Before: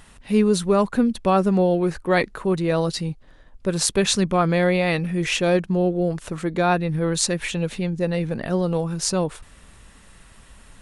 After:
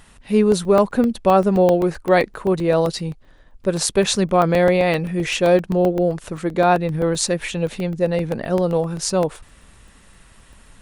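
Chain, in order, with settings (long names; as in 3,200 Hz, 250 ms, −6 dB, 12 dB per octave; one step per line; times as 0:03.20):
dynamic equaliser 600 Hz, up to +6 dB, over −33 dBFS, Q 0.94
regular buffer underruns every 0.13 s, samples 64, zero, from 0:00.52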